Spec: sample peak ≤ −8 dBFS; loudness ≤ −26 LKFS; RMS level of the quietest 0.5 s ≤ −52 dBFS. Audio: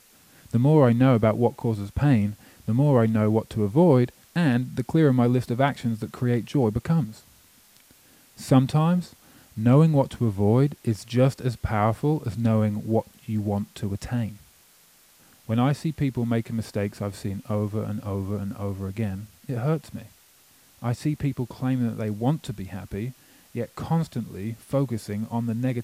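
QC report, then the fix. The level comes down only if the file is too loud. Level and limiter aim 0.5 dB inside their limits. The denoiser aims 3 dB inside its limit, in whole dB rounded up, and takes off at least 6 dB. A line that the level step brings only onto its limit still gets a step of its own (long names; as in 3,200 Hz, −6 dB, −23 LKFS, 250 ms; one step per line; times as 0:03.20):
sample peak −6.0 dBFS: out of spec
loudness −24.5 LKFS: out of spec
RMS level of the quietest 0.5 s −57 dBFS: in spec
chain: level −2 dB
brickwall limiter −8.5 dBFS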